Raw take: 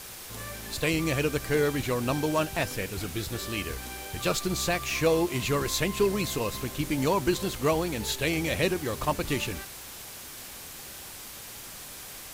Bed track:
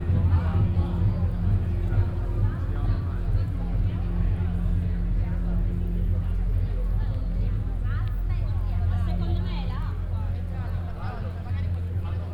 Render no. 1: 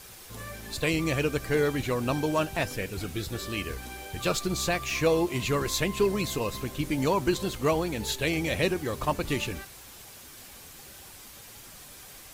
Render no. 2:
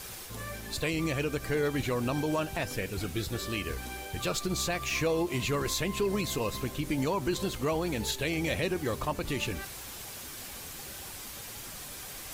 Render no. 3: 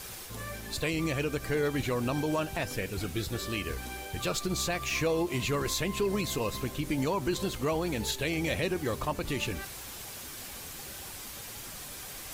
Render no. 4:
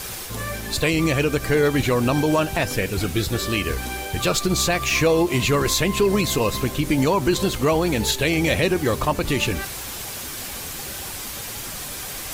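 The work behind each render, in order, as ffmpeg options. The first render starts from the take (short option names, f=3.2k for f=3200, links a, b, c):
-af "afftdn=nr=6:nf=-43"
-af "areverse,acompressor=mode=upward:threshold=-35dB:ratio=2.5,areverse,alimiter=limit=-20.5dB:level=0:latency=1:release=89"
-af anull
-af "volume=10.5dB"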